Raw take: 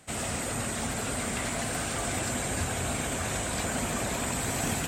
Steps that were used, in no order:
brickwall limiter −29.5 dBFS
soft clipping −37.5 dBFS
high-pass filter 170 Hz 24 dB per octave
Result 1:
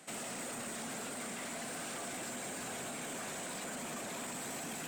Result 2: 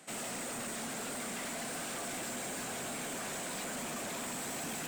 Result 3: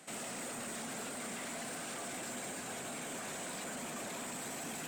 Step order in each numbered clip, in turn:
high-pass filter, then brickwall limiter, then soft clipping
high-pass filter, then soft clipping, then brickwall limiter
brickwall limiter, then high-pass filter, then soft clipping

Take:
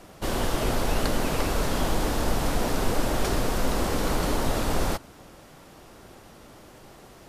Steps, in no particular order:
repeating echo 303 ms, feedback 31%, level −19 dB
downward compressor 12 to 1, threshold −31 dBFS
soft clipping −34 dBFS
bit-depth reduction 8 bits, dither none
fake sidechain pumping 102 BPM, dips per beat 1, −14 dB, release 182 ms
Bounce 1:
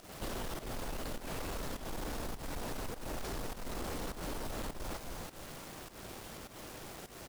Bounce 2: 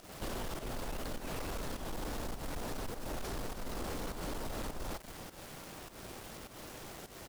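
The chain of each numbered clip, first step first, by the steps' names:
repeating echo, then downward compressor, then soft clipping, then bit-depth reduction, then fake sidechain pumping
downward compressor, then bit-depth reduction, then fake sidechain pumping, then repeating echo, then soft clipping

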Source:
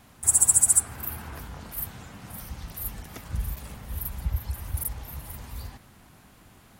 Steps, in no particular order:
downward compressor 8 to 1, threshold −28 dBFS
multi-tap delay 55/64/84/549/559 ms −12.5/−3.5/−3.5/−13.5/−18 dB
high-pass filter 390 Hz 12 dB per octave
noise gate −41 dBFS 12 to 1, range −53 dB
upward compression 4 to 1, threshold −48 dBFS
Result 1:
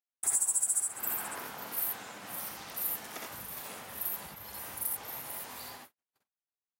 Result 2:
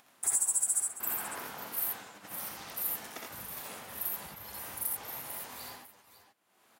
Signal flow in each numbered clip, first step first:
downward compressor, then multi-tap delay, then upward compression, then noise gate, then high-pass filter
downward compressor, then noise gate, then high-pass filter, then upward compression, then multi-tap delay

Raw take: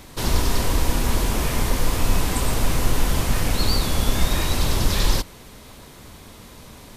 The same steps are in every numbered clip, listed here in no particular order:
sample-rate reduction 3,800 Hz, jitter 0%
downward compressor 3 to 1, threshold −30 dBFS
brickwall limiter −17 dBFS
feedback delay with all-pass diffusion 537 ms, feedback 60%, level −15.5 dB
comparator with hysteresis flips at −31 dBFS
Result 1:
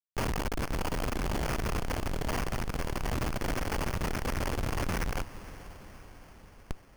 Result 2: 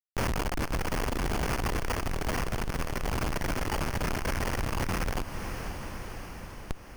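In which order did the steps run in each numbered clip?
brickwall limiter, then comparator with hysteresis, then downward compressor, then feedback delay with all-pass diffusion, then sample-rate reduction
comparator with hysteresis, then sample-rate reduction, then feedback delay with all-pass diffusion, then brickwall limiter, then downward compressor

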